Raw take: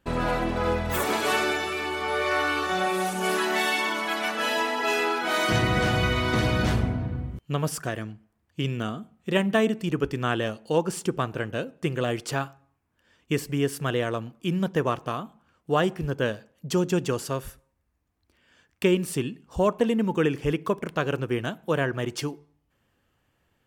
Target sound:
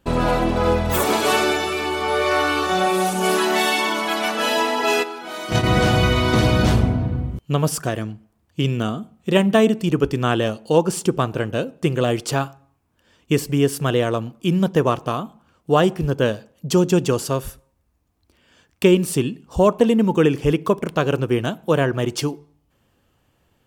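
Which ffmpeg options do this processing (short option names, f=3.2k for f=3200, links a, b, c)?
-filter_complex "[0:a]asplit=3[a][b][c];[a]afade=t=out:st=5.02:d=0.02[d];[b]agate=range=-12dB:threshold=-21dB:ratio=16:detection=peak,afade=t=in:st=5.02:d=0.02,afade=t=out:st=5.65:d=0.02[e];[c]afade=t=in:st=5.65:d=0.02[f];[d][e][f]amix=inputs=3:normalize=0,equalizer=f=1.8k:w=1.5:g=-5.5,volume=7.5dB"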